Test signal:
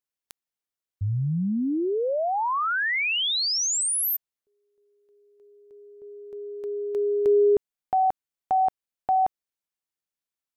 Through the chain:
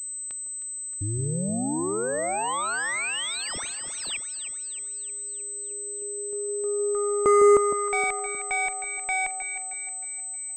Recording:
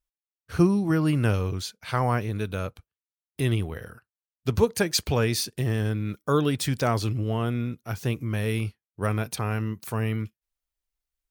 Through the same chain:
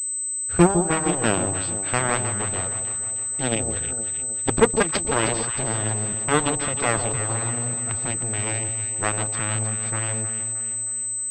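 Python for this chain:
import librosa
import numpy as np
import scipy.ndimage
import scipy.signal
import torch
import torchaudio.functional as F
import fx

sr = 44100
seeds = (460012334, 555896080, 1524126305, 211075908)

y = fx.cheby_harmonics(x, sr, harmonics=(3, 6, 7), levels_db=(-15, -40, -16), full_scale_db=-9.0)
y = fx.echo_alternate(y, sr, ms=156, hz=1000.0, feedback_pct=71, wet_db=-6.5)
y = fx.pwm(y, sr, carrier_hz=8100.0)
y = F.gain(torch.from_numpy(y), 6.0).numpy()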